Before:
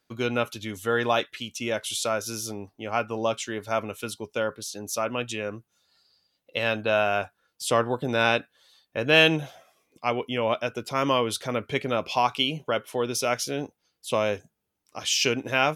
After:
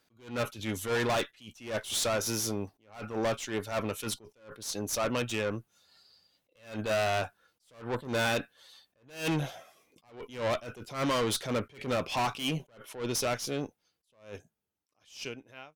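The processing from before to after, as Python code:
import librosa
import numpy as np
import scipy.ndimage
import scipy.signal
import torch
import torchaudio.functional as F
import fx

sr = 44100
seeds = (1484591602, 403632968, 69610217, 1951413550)

y = fx.fade_out_tail(x, sr, length_s=3.66)
y = fx.tube_stage(y, sr, drive_db=30.0, bias=0.4)
y = fx.attack_slew(y, sr, db_per_s=140.0)
y = y * librosa.db_to_amplitude(4.5)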